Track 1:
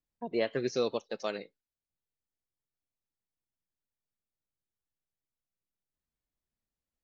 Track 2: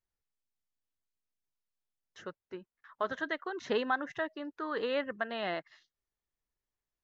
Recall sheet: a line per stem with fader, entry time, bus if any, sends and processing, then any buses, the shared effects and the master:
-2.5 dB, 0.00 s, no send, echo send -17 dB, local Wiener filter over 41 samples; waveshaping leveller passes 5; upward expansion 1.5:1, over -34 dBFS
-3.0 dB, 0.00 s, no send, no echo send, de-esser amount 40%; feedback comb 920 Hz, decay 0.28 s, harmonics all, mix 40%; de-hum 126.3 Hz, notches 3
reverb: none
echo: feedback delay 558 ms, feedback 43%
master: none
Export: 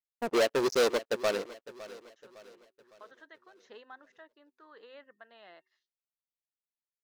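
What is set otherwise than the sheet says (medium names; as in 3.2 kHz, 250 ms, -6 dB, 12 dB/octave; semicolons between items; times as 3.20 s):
stem 2 -3.0 dB -> -14.5 dB; master: extra tone controls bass -12 dB, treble +4 dB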